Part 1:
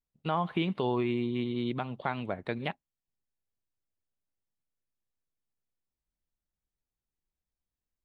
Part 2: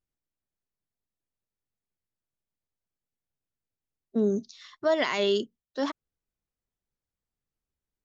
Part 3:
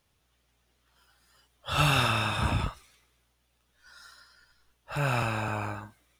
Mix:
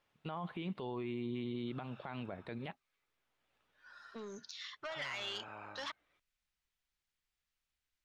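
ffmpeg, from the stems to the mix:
-filter_complex "[0:a]volume=-6dB,asplit=2[a][b];[1:a]equalizer=f=270:w=0.66:g=-13.5,acompressor=threshold=-32dB:ratio=6,asoftclip=type=tanh:threshold=-32.5dB,volume=-5dB[c];[2:a]acompressor=threshold=-43dB:ratio=2,bandpass=f=430:t=q:w=0.56:csg=0,volume=-7dB[d];[b]apad=whole_len=273250[e];[d][e]sidechaincompress=threshold=-57dB:ratio=6:attack=7.6:release=486[f];[c][f]amix=inputs=2:normalize=0,equalizer=f=2.6k:w=0.38:g=14,acompressor=threshold=-52dB:ratio=1.5,volume=0dB[g];[a][g]amix=inputs=2:normalize=0,alimiter=level_in=7.5dB:limit=-24dB:level=0:latency=1:release=23,volume=-7.5dB"

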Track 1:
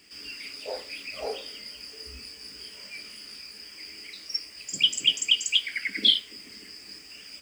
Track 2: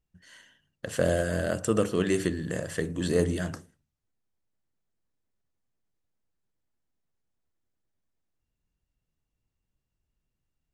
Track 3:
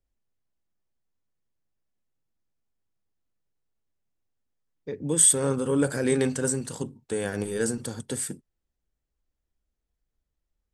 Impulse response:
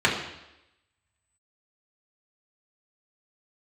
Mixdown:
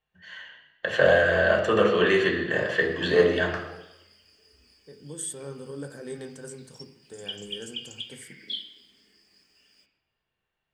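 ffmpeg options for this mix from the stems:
-filter_complex "[0:a]adelay=2450,volume=-19dB,asplit=2[a][b];[b]volume=-16.5dB[c];[1:a]acrossover=split=490 4600:gain=0.158 1 0.0891[d][e][f];[d][e][f]amix=inputs=3:normalize=0,volume=-1.5dB,asplit=2[g][h];[h]volume=-4.5dB[i];[2:a]volume=-16dB,asplit=2[j][k];[k]volume=-20.5dB[l];[3:a]atrim=start_sample=2205[m];[c][i][l]amix=inputs=3:normalize=0[n];[n][m]afir=irnorm=-1:irlink=0[o];[a][g][j][o]amix=inputs=4:normalize=0"

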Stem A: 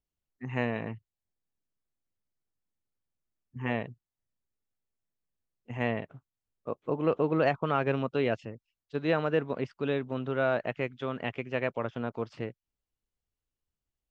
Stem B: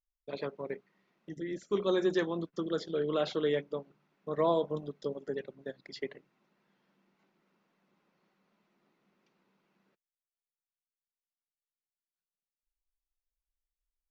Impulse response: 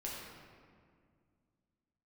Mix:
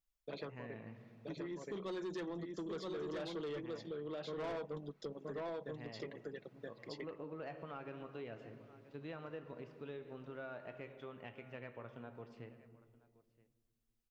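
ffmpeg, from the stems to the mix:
-filter_complex "[0:a]flanger=delay=7:depth=4.5:regen=66:speed=0.33:shape=triangular,volume=-13dB,asplit=4[a][b][c][d];[b]volume=-7.5dB[e];[c]volume=-21dB[f];[1:a]aecho=1:1:6.2:0.39,volume=1dB,asplit=2[g][h];[h]volume=-4.5dB[i];[d]apad=whole_len=622134[j];[g][j]sidechaincompress=threshold=-48dB:ratio=8:attack=16:release=189[k];[2:a]atrim=start_sample=2205[l];[e][l]afir=irnorm=-1:irlink=0[m];[f][i]amix=inputs=2:normalize=0,aecho=0:1:975:1[n];[a][k][m][n]amix=inputs=4:normalize=0,asoftclip=type=tanh:threshold=-27dB,acompressor=threshold=-44dB:ratio=3"

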